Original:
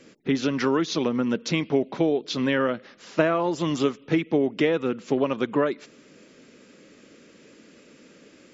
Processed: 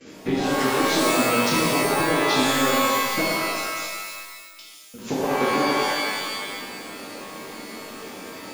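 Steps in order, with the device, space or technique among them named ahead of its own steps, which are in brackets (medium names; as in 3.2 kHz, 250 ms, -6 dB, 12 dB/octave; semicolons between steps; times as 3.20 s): drum-bus smash (transient shaper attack +8 dB, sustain +2 dB; compression, threshold -28 dBFS, peak gain reduction 19 dB; saturation -20.5 dBFS, distortion -18 dB); 3.21–4.94 s: inverse Chebyshev high-pass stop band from 2 kHz, stop band 40 dB; gate -57 dBFS, range -13 dB; pitch-shifted reverb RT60 1.6 s, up +12 st, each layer -2 dB, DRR -6.5 dB; trim +2.5 dB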